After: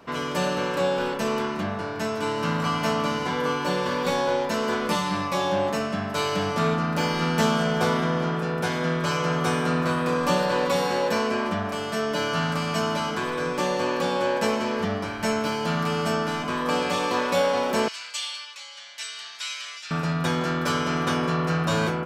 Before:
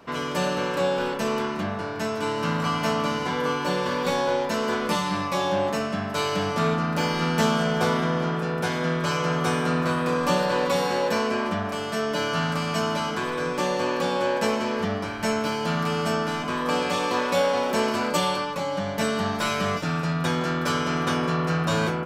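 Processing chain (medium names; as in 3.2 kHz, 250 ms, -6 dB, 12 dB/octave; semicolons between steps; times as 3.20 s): 17.88–19.91 s: Butterworth band-pass 4.8 kHz, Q 0.76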